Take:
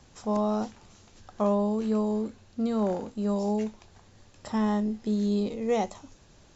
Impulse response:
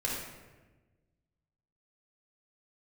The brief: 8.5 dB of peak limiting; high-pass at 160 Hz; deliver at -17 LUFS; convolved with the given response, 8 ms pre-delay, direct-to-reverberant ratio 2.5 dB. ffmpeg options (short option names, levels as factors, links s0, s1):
-filter_complex "[0:a]highpass=160,alimiter=limit=0.075:level=0:latency=1,asplit=2[s0][s1];[1:a]atrim=start_sample=2205,adelay=8[s2];[s1][s2]afir=irnorm=-1:irlink=0,volume=0.376[s3];[s0][s3]amix=inputs=2:normalize=0,volume=4.47"